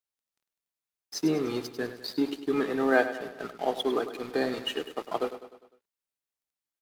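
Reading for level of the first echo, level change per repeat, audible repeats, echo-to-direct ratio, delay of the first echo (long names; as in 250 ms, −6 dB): −12.0 dB, −5.5 dB, 5, −10.5 dB, 101 ms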